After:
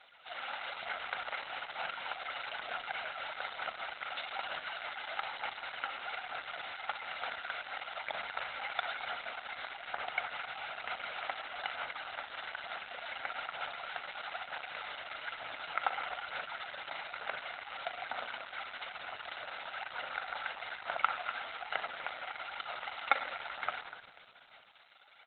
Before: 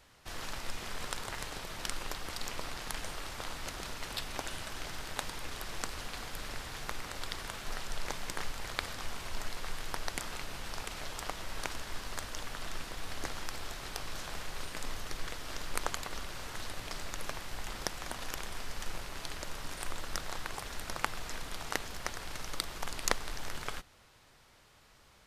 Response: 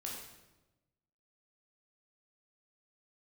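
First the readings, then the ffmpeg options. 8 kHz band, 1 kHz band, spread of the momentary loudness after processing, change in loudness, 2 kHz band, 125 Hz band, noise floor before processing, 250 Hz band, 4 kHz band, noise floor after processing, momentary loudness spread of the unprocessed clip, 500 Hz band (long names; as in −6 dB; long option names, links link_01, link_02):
below −40 dB, +4.0 dB, 5 LU, +0.5 dB, +4.0 dB, −20.5 dB, −61 dBFS, −14.5 dB, −2.0 dB, −58 dBFS, 5 LU, −0.5 dB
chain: -filter_complex "[0:a]aphaser=in_gain=1:out_gain=1:delay=3.8:decay=0.51:speed=1.1:type=sinusoidal,asplit=5[link_01][link_02][link_03][link_04][link_05];[link_02]adelay=244,afreqshift=51,volume=-12dB[link_06];[link_03]adelay=488,afreqshift=102,volume=-20.9dB[link_07];[link_04]adelay=732,afreqshift=153,volume=-29.7dB[link_08];[link_05]adelay=976,afreqshift=204,volume=-38.6dB[link_09];[link_01][link_06][link_07][link_08][link_09]amix=inputs=5:normalize=0,acrossover=split=3300[link_10][link_11];[link_11]acompressor=threshold=-56dB:ratio=4:attack=1:release=60[link_12];[link_10][link_12]amix=inputs=2:normalize=0,highpass=770,aecho=1:1:1.4:0.85,asplit=2[link_13][link_14];[1:a]atrim=start_sample=2205,lowshelf=frequency=400:gain=6.5,adelay=41[link_15];[link_14][link_15]afir=irnorm=-1:irlink=0,volume=-6.5dB[link_16];[link_13][link_16]amix=inputs=2:normalize=0,volume=3.5dB" -ar 48000 -c:a libopus -b:a 8k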